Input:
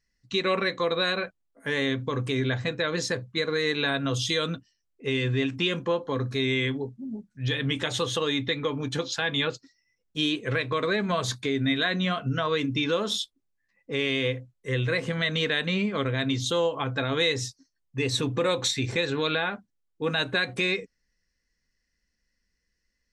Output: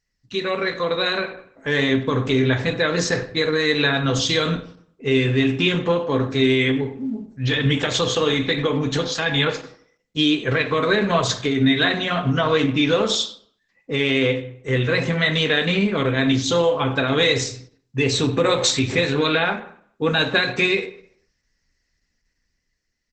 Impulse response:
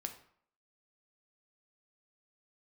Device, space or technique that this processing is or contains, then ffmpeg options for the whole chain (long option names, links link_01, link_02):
speakerphone in a meeting room: -filter_complex "[1:a]atrim=start_sample=2205[link_01];[0:a][link_01]afir=irnorm=-1:irlink=0,asplit=2[link_02][link_03];[link_03]adelay=100,highpass=300,lowpass=3400,asoftclip=type=hard:threshold=-22.5dB,volume=-19dB[link_04];[link_02][link_04]amix=inputs=2:normalize=0,dynaudnorm=framelen=160:gausssize=13:maxgain=6dB,volume=3.5dB" -ar 48000 -c:a libopus -b:a 12k